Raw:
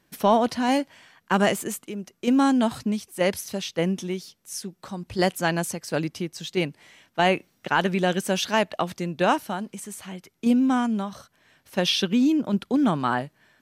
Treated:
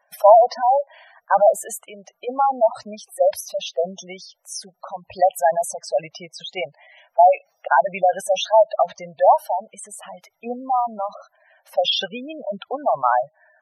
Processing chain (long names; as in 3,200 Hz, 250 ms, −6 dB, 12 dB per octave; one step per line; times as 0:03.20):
low shelf with overshoot 440 Hz −13 dB, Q 3
gate on every frequency bin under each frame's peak −10 dB strong
floating-point word with a short mantissa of 8 bits
level +4.5 dB